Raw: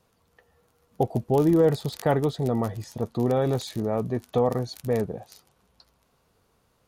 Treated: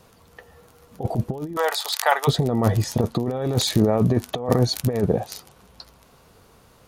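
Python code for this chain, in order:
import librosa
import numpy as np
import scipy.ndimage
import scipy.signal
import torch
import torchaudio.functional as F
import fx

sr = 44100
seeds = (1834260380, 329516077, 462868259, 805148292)

y = fx.highpass(x, sr, hz=830.0, slope=24, at=(1.55, 2.27), fade=0.02)
y = fx.over_compress(y, sr, threshold_db=-28.0, ratio=-0.5)
y = y * 10.0 ** (9.0 / 20.0)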